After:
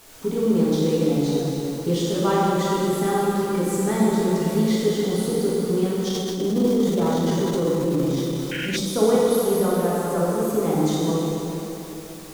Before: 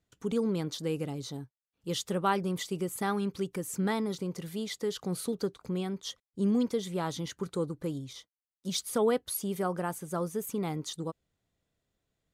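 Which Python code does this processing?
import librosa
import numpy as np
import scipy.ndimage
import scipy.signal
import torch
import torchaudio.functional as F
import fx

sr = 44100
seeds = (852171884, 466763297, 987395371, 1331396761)

y = fx.recorder_agc(x, sr, target_db=-22.5, rise_db_per_s=16.0, max_gain_db=30)
y = scipy.signal.sosfilt(scipy.signal.butter(2, 150.0, 'highpass', fs=sr, output='sos'), y)
y = fx.quant_dither(y, sr, seeds[0], bits=8, dither='triangular')
y = fx.rev_plate(y, sr, seeds[1], rt60_s=3.6, hf_ratio=0.8, predelay_ms=0, drr_db=-7.5)
y = fx.spec_paint(y, sr, seeds[2], shape='noise', start_s=8.51, length_s=0.26, low_hz=1400.0, high_hz=3200.0, level_db=-27.0)
y = fx.tilt_eq(y, sr, slope=-3.5)
y = fx.hum_notches(y, sr, base_hz=60, count=4)
y = fx.transient(y, sr, attack_db=-8, sustain_db=4, at=(6.07, 8.8))
y = fx.bass_treble(y, sr, bass_db=-6, treble_db=8)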